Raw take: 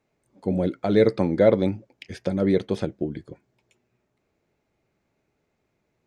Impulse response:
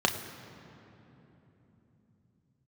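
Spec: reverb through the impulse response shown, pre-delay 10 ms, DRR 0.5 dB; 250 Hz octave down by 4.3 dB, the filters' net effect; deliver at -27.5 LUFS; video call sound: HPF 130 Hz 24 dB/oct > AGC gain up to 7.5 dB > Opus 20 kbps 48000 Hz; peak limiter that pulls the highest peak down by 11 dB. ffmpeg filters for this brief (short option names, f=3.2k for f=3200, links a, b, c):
-filter_complex "[0:a]equalizer=f=250:t=o:g=-6,alimiter=limit=-17dB:level=0:latency=1,asplit=2[a][b];[1:a]atrim=start_sample=2205,adelay=10[c];[b][c]afir=irnorm=-1:irlink=0,volume=-12.5dB[d];[a][d]amix=inputs=2:normalize=0,highpass=f=130:w=0.5412,highpass=f=130:w=1.3066,dynaudnorm=m=7.5dB,volume=1.5dB" -ar 48000 -c:a libopus -b:a 20k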